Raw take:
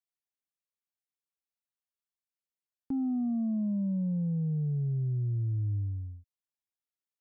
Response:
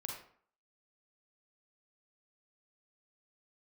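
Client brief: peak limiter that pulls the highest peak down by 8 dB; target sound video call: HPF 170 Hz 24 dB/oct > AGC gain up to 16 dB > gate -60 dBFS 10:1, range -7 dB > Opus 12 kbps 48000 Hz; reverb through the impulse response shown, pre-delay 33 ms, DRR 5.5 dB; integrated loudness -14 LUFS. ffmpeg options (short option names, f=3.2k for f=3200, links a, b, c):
-filter_complex "[0:a]alimiter=level_in=11dB:limit=-24dB:level=0:latency=1,volume=-11dB,asplit=2[a][b];[1:a]atrim=start_sample=2205,adelay=33[c];[b][c]afir=irnorm=-1:irlink=0,volume=-4.5dB[d];[a][d]amix=inputs=2:normalize=0,highpass=f=170:w=0.5412,highpass=f=170:w=1.3066,dynaudnorm=m=16dB,agate=range=-7dB:threshold=-60dB:ratio=10,volume=26.5dB" -ar 48000 -c:a libopus -b:a 12k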